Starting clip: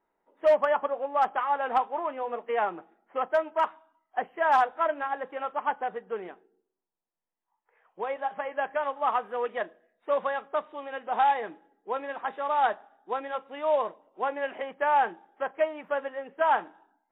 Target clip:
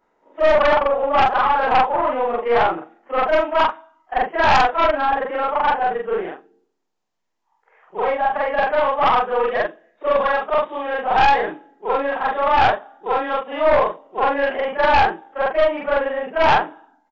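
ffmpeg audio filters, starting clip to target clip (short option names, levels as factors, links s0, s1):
-af "afftfilt=real='re':imag='-im':win_size=4096:overlap=0.75,aeval=exprs='0.158*(cos(1*acos(clip(val(0)/0.158,-1,1)))-cos(1*PI/2))+0.0398*(cos(4*acos(clip(val(0)/0.158,-1,1)))-cos(4*PI/2))+0.0501*(cos(5*acos(clip(val(0)/0.158,-1,1)))-cos(5*PI/2))':c=same,aresample=16000,aresample=44100,volume=2.66"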